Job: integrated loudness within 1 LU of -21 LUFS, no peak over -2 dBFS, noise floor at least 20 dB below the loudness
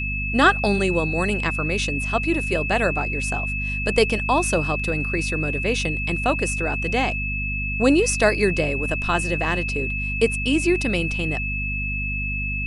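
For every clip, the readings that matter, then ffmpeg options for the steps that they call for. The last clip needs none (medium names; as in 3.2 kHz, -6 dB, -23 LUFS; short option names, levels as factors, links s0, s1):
hum 50 Hz; highest harmonic 250 Hz; hum level -26 dBFS; steady tone 2.6 kHz; tone level -26 dBFS; loudness -21.5 LUFS; peak level -2.0 dBFS; loudness target -21.0 LUFS
-> -af "bandreject=f=50:t=h:w=4,bandreject=f=100:t=h:w=4,bandreject=f=150:t=h:w=4,bandreject=f=200:t=h:w=4,bandreject=f=250:t=h:w=4"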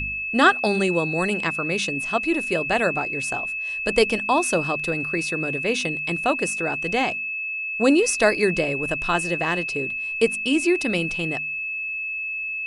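hum not found; steady tone 2.6 kHz; tone level -26 dBFS
-> -af "bandreject=f=2600:w=30"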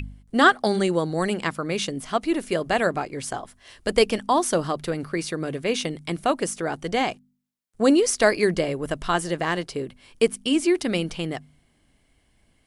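steady tone not found; loudness -24.0 LUFS; peak level -2.5 dBFS; loudness target -21.0 LUFS
-> -af "volume=1.41,alimiter=limit=0.794:level=0:latency=1"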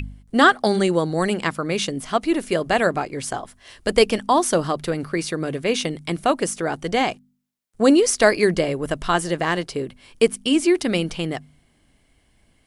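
loudness -21.0 LUFS; peak level -2.0 dBFS; noise floor -62 dBFS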